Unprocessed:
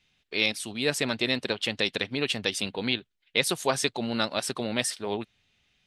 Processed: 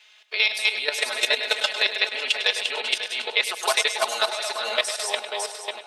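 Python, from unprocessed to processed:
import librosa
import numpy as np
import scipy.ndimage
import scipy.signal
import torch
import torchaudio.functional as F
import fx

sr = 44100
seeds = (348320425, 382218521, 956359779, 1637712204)

p1 = fx.reverse_delay_fb(x, sr, ms=276, feedback_pct=50, wet_db=-2.0)
p2 = scipy.signal.sosfilt(scipy.signal.butter(4, 600.0, 'highpass', fs=sr, output='sos'), p1)
p3 = fx.high_shelf(p2, sr, hz=9400.0, db=-6.0)
p4 = p3 + 0.87 * np.pad(p3, (int(4.7 * sr / 1000.0), 0))[:len(p3)]
p5 = fx.level_steps(p4, sr, step_db=12)
p6 = p5 + fx.echo_feedback(p5, sr, ms=101, feedback_pct=35, wet_db=-12, dry=0)
p7 = fx.band_squash(p6, sr, depth_pct=40)
y = p7 * librosa.db_to_amplitude(5.5)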